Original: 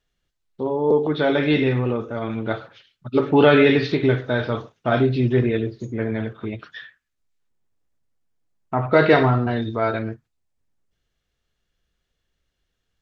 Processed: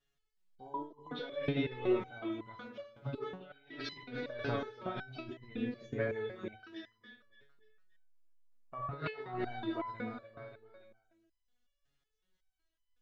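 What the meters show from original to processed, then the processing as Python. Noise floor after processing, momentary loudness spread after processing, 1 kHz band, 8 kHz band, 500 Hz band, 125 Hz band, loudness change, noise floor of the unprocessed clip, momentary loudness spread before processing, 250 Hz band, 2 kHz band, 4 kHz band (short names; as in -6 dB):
-83 dBFS, 16 LU, -17.5 dB, n/a, -19.5 dB, -21.0 dB, -19.5 dB, -77 dBFS, 15 LU, -18.5 dB, -19.0 dB, -16.5 dB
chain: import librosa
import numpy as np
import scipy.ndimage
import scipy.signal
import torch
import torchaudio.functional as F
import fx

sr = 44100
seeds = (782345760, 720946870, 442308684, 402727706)

y = fx.echo_feedback(x, sr, ms=288, feedback_pct=44, wet_db=-14.5)
y = fx.over_compress(y, sr, threshold_db=-22.0, ratio=-0.5)
y = fx.resonator_held(y, sr, hz=5.4, low_hz=140.0, high_hz=1000.0)
y = F.gain(torch.from_numpy(y), 1.5).numpy()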